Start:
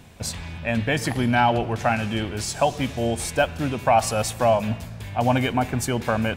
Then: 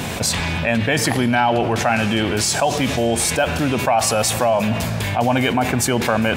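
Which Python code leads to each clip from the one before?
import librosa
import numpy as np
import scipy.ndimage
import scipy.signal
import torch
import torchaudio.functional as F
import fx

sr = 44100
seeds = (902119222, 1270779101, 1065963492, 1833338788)

y = fx.highpass(x, sr, hz=180.0, slope=6)
y = fx.env_flatten(y, sr, amount_pct=70)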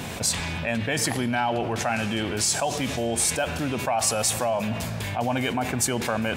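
y = fx.dynamic_eq(x, sr, hz=8400.0, q=0.73, threshold_db=-33.0, ratio=4.0, max_db=6)
y = F.gain(torch.from_numpy(y), -8.0).numpy()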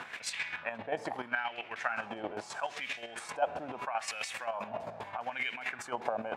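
y = fx.chopper(x, sr, hz=7.6, depth_pct=60, duty_pct=25)
y = fx.wah_lfo(y, sr, hz=0.77, low_hz=690.0, high_hz=2300.0, q=2.5)
y = F.gain(torch.from_numpy(y), 4.0).numpy()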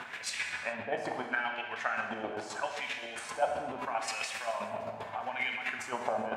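y = fx.rev_gated(x, sr, seeds[0], gate_ms=450, shape='falling', drr_db=3.0)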